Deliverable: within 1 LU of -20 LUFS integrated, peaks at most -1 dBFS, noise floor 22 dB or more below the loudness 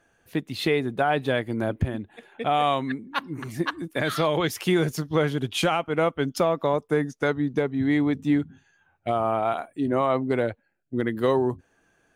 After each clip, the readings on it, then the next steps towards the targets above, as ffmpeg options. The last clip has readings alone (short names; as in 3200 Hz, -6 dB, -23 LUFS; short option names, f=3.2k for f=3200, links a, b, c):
loudness -25.5 LUFS; peak -12.0 dBFS; loudness target -20.0 LUFS
-> -af "volume=5.5dB"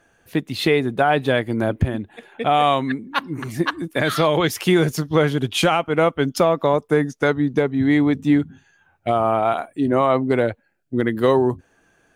loudness -20.0 LUFS; peak -6.5 dBFS; noise floor -61 dBFS